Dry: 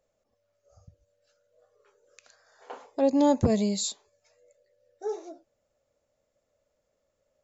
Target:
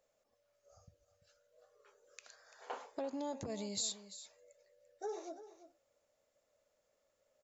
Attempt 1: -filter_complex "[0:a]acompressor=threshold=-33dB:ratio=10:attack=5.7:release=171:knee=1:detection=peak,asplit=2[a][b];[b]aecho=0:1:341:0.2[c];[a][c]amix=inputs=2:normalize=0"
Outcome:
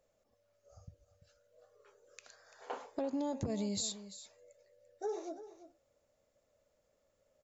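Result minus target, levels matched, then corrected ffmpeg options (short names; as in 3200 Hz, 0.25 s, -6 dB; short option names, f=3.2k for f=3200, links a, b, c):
250 Hz band +3.5 dB
-filter_complex "[0:a]acompressor=threshold=-33dB:ratio=10:attack=5.7:release=171:knee=1:detection=peak,lowshelf=f=320:g=-11,asplit=2[a][b];[b]aecho=0:1:341:0.2[c];[a][c]amix=inputs=2:normalize=0"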